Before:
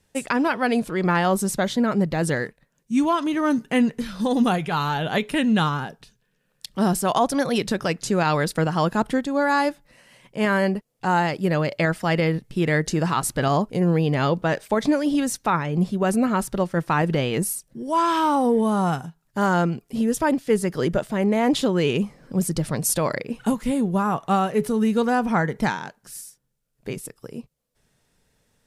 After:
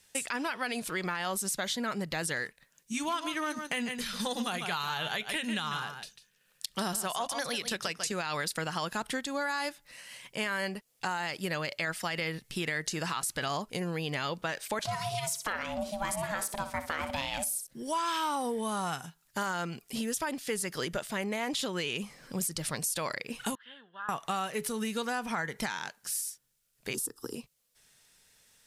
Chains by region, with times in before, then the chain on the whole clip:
0:02.93–0:08.12: notch filter 270 Hz, Q 6.8 + transient designer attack +2 dB, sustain −3 dB + single-tap delay 146 ms −11.5 dB
0:14.79–0:17.67: ring modulation 410 Hz + high-shelf EQ 12,000 Hz +5 dB + repeating echo 61 ms, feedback 25%, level −12.5 dB
0:23.55–0:24.09: pair of resonant band-passes 2,300 Hz, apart 0.91 octaves + high-frequency loss of the air 440 metres
0:26.94–0:27.35: parametric band 200 Hz +13.5 dB 2.6 octaves + phaser with its sweep stopped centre 610 Hz, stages 6 + multiband upward and downward compressor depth 70%
whole clip: tilt shelving filter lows −9 dB, about 1,100 Hz; brickwall limiter −14 dBFS; downward compressor 3 to 1, threshold −32 dBFS

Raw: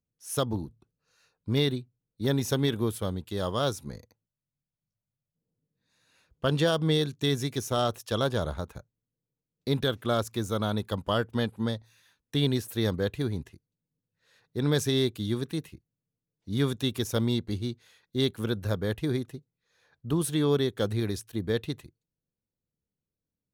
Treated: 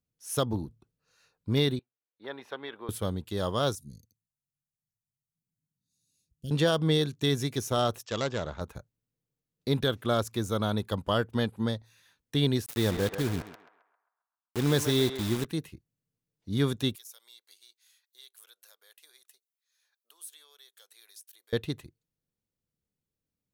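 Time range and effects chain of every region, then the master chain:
0:01.79–0:02.89: high-pass filter 780 Hz + high-frequency loss of the air 490 metres
0:03.75–0:06.51: Chebyshev band-stop filter 160–7,200 Hz + low-shelf EQ 160 Hz −9 dB
0:08.03–0:08.61: phase distortion by the signal itself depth 0.13 ms + Chebyshev low-pass with heavy ripple 7,800 Hz, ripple 3 dB + low-shelf EQ 72 Hz −10 dB
0:12.66–0:15.45: bit-depth reduction 6 bits, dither none + feedback echo with a band-pass in the loop 133 ms, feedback 49%, band-pass 1,100 Hz, level −6 dB
0:16.95–0:21.53: high-pass filter 490 Hz 24 dB per octave + downward compressor 2 to 1, threshold −51 dBFS + first difference
whole clip: no processing

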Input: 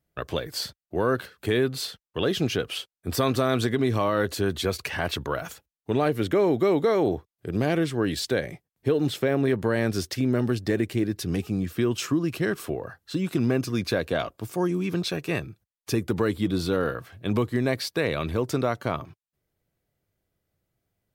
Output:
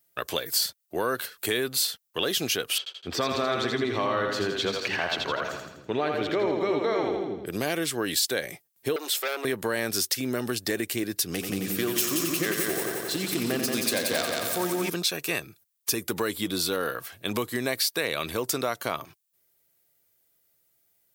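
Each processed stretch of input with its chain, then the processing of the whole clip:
0:02.78–0:07.46: high-frequency loss of the air 190 metres + echo with a time of its own for lows and highs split 320 Hz, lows 241 ms, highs 82 ms, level −4 dB
0:08.96–0:09.45: high-pass filter 410 Hz 24 dB per octave + saturating transformer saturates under 1,500 Hz
0:11.31–0:14.90: phase distortion by the signal itself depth 0.12 ms + echo machine with several playback heads 89 ms, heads first and second, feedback 63%, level −7 dB
whole clip: RIAA equalisation recording; downward compressor 2 to 1, threshold −28 dBFS; level +2.5 dB

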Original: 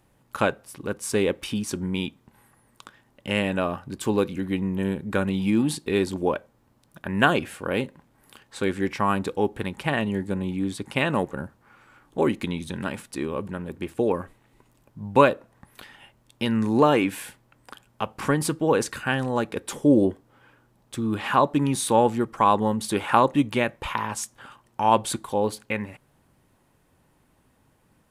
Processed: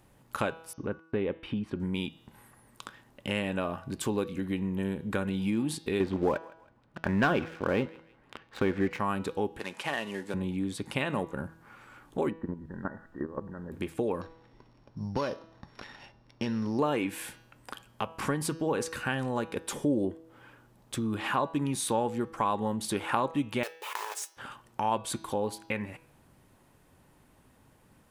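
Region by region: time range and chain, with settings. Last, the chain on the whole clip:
0:00.73–0:01.80: high-frequency loss of the air 460 metres + noise gate −48 dBFS, range −37 dB
0:06.00–0:08.99: low-pass filter 2,500 Hz + leveller curve on the samples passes 2 + feedback echo with a high-pass in the loop 161 ms, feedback 24%, high-pass 670 Hz, level −24 dB
0:09.59–0:10.34: variable-slope delta modulation 64 kbit/s + meter weighting curve A
0:12.29–0:13.71: Chebyshev low-pass filter 1,900 Hz, order 10 + output level in coarse steps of 14 dB + background noise brown −62 dBFS
0:14.21–0:16.79: samples sorted by size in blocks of 8 samples + low-pass filter 3,500 Hz + downward compressor 3 to 1, threshold −22 dBFS
0:23.63–0:24.37: one scale factor per block 3 bits + linear-phase brick-wall high-pass 330 Hz + tuned comb filter 430 Hz, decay 0.17 s
whole clip: hum removal 162.9 Hz, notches 39; downward compressor 2 to 1, threshold −36 dBFS; level +2 dB

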